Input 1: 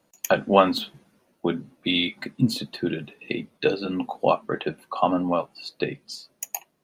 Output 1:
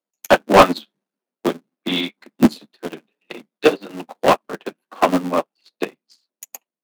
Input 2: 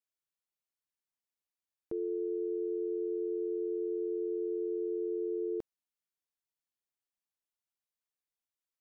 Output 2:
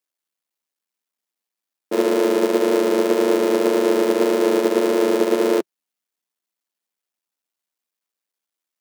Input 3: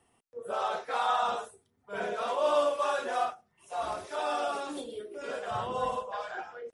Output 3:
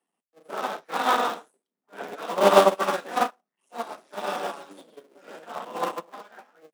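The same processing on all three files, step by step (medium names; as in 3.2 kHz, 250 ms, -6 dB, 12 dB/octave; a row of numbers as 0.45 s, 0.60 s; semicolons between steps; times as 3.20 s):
cycle switcher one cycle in 3, muted; steep high-pass 170 Hz 48 dB/octave; flange 1.8 Hz, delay 1.7 ms, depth 9.1 ms, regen -48%; overload inside the chain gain 20 dB; upward expansion 2.5:1, over -46 dBFS; peak normalisation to -2 dBFS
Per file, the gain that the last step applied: +18.0 dB, +25.0 dB, +19.0 dB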